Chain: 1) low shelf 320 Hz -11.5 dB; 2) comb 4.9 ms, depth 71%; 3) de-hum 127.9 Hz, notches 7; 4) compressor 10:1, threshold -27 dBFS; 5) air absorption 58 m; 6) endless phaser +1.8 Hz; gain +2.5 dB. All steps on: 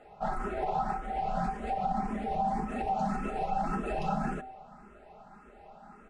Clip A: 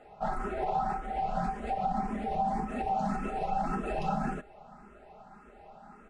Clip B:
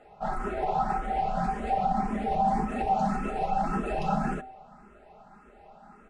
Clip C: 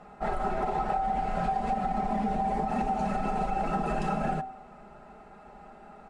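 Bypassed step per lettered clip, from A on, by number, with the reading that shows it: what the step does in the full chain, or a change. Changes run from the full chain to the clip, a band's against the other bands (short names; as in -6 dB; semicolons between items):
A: 3, momentary loudness spread change -4 LU; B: 4, mean gain reduction 2.5 dB; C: 6, momentary loudness spread change -7 LU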